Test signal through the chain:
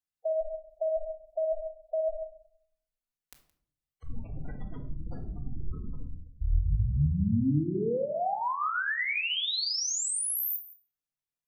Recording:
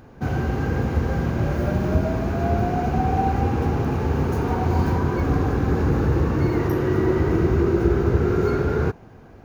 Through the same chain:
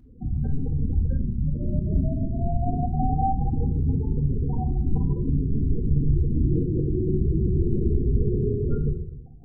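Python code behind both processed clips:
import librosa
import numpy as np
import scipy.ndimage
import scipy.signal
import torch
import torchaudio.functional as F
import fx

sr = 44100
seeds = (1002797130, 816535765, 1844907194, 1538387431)

y = fx.octave_divider(x, sr, octaves=1, level_db=1.0)
y = y + 10.0 ** (-19.0 / 20.0) * np.pad(y, (int(170 * sr / 1000.0), 0))[:len(y)]
y = fx.spec_gate(y, sr, threshold_db=-10, keep='strong')
y = fx.room_shoebox(y, sr, seeds[0], volume_m3=860.0, walls='furnished', distance_m=1.9)
y = y * librosa.db_to_amplitude(-7.5)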